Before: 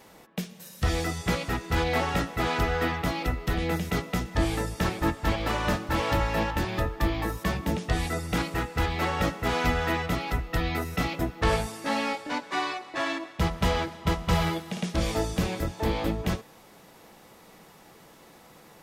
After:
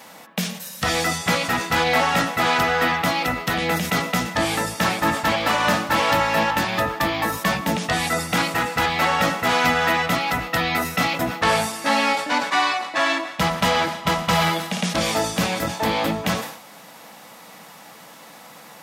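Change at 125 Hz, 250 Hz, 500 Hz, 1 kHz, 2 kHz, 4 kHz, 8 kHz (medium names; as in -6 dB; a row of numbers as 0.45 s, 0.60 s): 0.0 dB, +4.0 dB, +6.0 dB, +10.0 dB, +10.5 dB, +10.5 dB, +11.0 dB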